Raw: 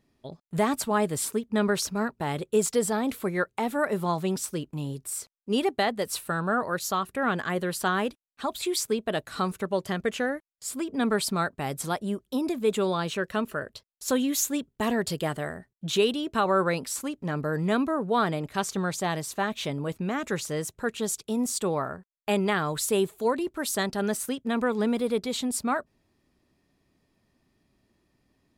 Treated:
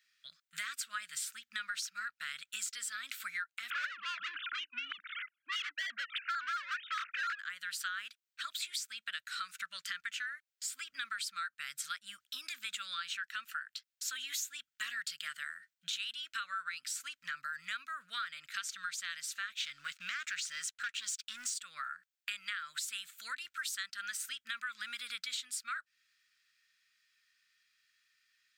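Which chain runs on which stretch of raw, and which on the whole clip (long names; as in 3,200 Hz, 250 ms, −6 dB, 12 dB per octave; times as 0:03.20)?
0:03.70–0:07.39: three sine waves on the formant tracks + mid-hump overdrive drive 29 dB, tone 1,500 Hz, clips at −11 dBFS + Butterworth band-reject 740 Hz, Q 7.4
0:19.60–0:21.54: low-pass filter 8,600 Hz + leveller curve on the samples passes 2
whole clip: elliptic high-pass filter 1,400 Hz, stop band 40 dB; parametric band 11,000 Hz −13.5 dB 0.32 octaves; downward compressor 5 to 1, threshold −43 dBFS; level +5.5 dB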